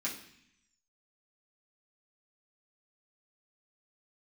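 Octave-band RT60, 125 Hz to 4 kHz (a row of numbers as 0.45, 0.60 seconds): 1.0, 0.95, 0.60, 0.70, 0.95, 0.90 seconds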